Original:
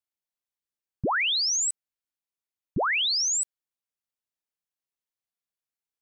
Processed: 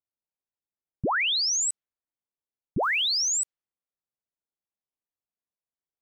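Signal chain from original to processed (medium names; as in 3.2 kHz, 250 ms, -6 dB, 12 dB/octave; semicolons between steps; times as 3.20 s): level-controlled noise filter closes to 940 Hz, open at -23.5 dBFS; 2.83–3.42 s: word length cut 10-bit, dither triangular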